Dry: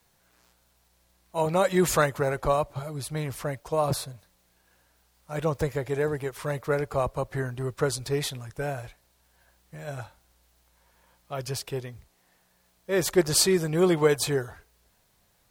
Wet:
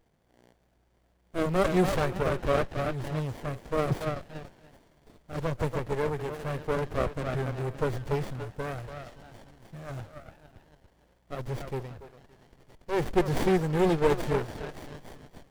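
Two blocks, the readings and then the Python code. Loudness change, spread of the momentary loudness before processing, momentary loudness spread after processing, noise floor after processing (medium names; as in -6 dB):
-3.0 dB, 16 LU, 19 LU, -67 dBFS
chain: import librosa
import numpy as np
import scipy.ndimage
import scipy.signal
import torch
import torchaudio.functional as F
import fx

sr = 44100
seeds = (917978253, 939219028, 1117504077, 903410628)

y = fx.echo_stepped(x, sr, ms=284, hz=790.0, octaves=0.7, feedback_pct=70, wet_db=-2)
y = fx.running_max(y, sr, window=33)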